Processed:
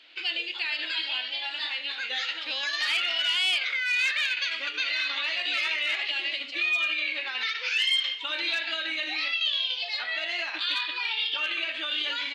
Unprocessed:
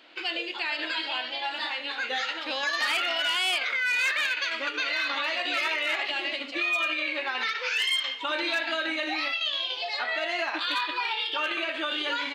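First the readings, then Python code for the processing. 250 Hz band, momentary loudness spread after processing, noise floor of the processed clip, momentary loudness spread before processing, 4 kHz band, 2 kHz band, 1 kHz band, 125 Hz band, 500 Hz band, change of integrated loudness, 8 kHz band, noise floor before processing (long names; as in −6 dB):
−10.0 dB, 6 LU, −37 dBFS, 6 LU, +2.5 dB, −0.5 dB, −8.0 dB, can't be measured, −9.5 dB, +0.5 dB, −2.0 dB, −36 dBFS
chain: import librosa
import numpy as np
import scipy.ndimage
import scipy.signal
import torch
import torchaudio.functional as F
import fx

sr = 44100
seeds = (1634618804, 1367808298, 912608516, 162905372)

y = fx.weighting(x, sr, curve='D')
y = F.gain(torch.from_numpy(y), -9.0).numpy()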